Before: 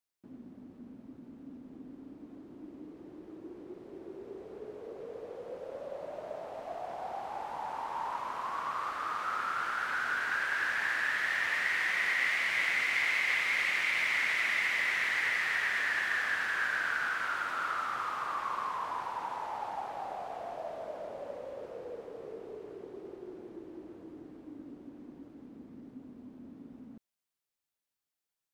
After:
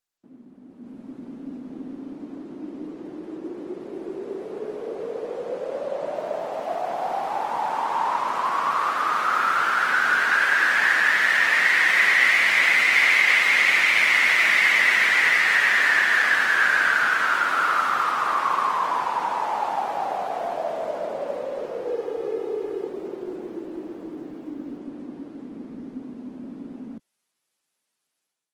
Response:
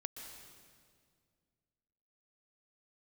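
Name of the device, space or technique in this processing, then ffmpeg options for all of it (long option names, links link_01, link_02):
video call: -filter_complex "[0:a]asettb=1/sr,asplit=3[link_01][link_02][link_03];[link_01]atrim=end=21.874[link_04];[link_02]atrim=start=21.87:end=22.88,asetpts=PTS-STARTPTS,afade=type=in:duration=0.004:curve=qsin,afade=type=out:start_time=1.006:duration=0.004:curve=qsin,aecho=1:1:2.4:0.67,atrim=end_sample=44541[link_05];[link_03]atrim=start=22.876[link_06];[link_04][link_05]acrossfade=duration=0.004:curve1=hsin:curve2=qsin[link_07];[link_07][link_06]acrossfade=duration=0.004:curve1=qsin:curve2=hsin,highpass=frequency=150:width=0.5412,highpass=frequency=150:width=1.3066,dynaudnorm=framelen=600:gausssize=3:maxgain=12.5dB" -ar 48000 -c:a libopus -b:a 20k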